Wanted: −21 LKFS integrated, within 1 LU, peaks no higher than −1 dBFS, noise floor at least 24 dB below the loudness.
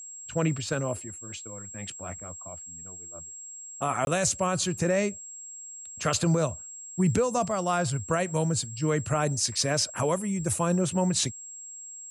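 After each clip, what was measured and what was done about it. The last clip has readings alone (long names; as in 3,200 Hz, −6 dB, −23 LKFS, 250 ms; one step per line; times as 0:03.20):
number of dropouts 1; longest dropout 21 ms; interfering tone 7,600 Hz; level of the tone −40 dBFS; integrated loudness −27.5 LKFS; sample peak −13.5 dBFS; target loudness −21.0 LKFS
→ repair the gap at 0:04.05, 21 ms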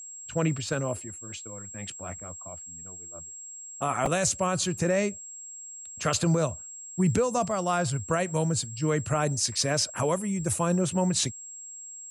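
number of dropouts 0; interfering tone 7,600 Hz; level of the tone −40 dBFS
→ notch filter 7,600 Hz, Q 30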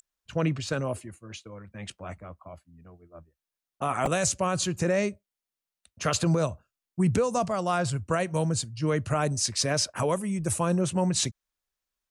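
interfering tone none found; integrated loudness −27.5 LKFS; sample peak −13.5 dBFS; target loudness −21.0 LKFS
→ level +6.5 dB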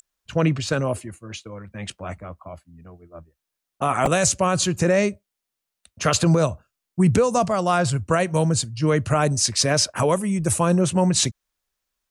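integrated loudness −21.0 LKFS; sample peak −7.0 dBFS; background noise floor −83 dBFS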